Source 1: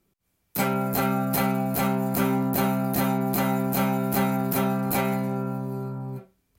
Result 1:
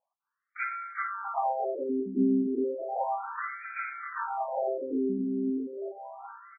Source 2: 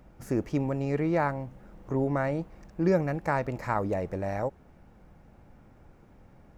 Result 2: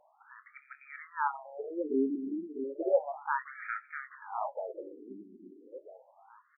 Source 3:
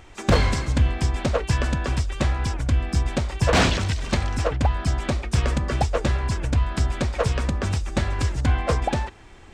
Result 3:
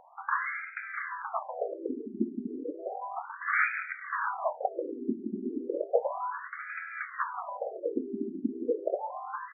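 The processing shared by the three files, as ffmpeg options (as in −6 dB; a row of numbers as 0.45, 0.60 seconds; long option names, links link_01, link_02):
-filter_complex "[0:a]lowpass=3000,asplit=2[link_01][link_02];[link_02]adelay=23,volume=-11dB[link_03];[link_01][link_03]amix=inputs=2:normalize=0,asplit=2[link_04][link_05];[link_05]aecho=0:1:650|1300|1950|2600|3250:0.447|0.201|0.0905|0.0407|0.0183[link_06];[link_04][link_06]amix=inputs=2:normalize=0,afftfilt=real='re*between(b*sr/1024,280*pow(1800/280,0.5+0.5*sin(2*PI*0.33*pts/sr))/1.41,280*pow(1800/280,0.5+0.5*sin(2*PI*0.33*pts/sr))*1.41)':imag='im*between(b*sr/1024,280*pow(1800/280,0.5+0.5*sin(2*PI*0.33*pts/sr))/1.41,280*pow(1800/280,0.5+0.5*sin(2*PI*0.33*pts/sr))*1.41)':win_size=1024:overlap=0.75"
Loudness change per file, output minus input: −6.0, −5.5, −10.0 LU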